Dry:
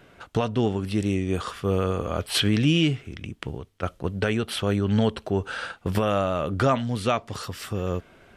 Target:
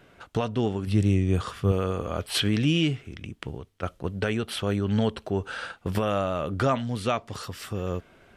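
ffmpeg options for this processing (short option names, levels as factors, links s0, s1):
-filter_complex "[0:a]asettb=1/sr,asplit=3[s0][s1][s2];[s0]atrim=end=0.874[s3];[s1]atrim=start=0.87:end=1.72,asetpts=PTS-STARTPTS,afade=t=in:d=0.004:c=qsin,afade=t=out:st=0.846:d=0.004:c=qsin,equalizer=f=110:t=o:w=1.5:g=9.5[s4];[s2]atrim=start=1.716[s5];[s3][s4]acrossfade=d=0.004:c1=hsin:c2=qsin[s6];[s6][s5]acrossfade=d=0.004:c1=qsin:c2=hsin,volume=0.75"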